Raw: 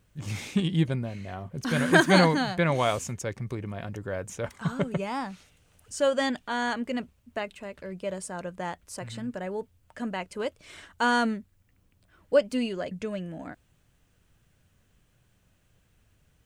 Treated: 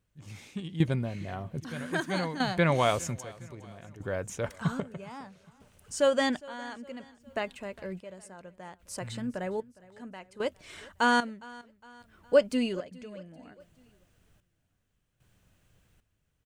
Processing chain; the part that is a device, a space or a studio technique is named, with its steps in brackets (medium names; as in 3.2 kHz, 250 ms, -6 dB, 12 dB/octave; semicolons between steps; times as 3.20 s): trance gate with a delay (trance gate "....xxxx" 75 bpm -12 dB; feedback delay 410 ms, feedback 48%, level -22 dB)